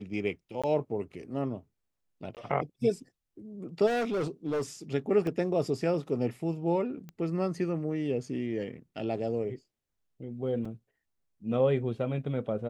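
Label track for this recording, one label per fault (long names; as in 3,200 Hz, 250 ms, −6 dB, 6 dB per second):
0.620000	0.640000	drop-out 16 ms
2.350000	2.370000	drop-out 18 ms
3.860000	4.620000	clipping −26.5 dBFS
5.270000	5.270000	drop-out 2.1 ms
7.090000	7.090000	click −30 dBFS
10.650000	10.650000	drop-out 4.2 ms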